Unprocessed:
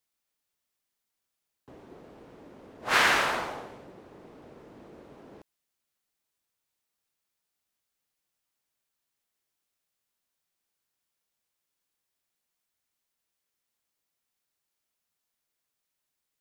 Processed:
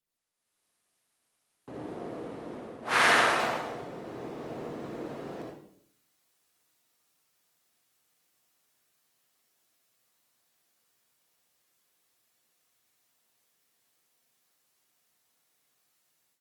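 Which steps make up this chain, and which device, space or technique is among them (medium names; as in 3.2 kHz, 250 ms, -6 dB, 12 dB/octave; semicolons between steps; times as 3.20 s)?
bass shelf 100 Hz +5.5 dB; far-field microphone of a smart speaker (reverberation RT60 0.65 s, pre-delay 56 ms, DRR -1.5 dB; high-pass 140 Hz 12 dB/octave; level rider gain up to 15 dB; trim -8 dB; Opus 32 kbps 48 kHz)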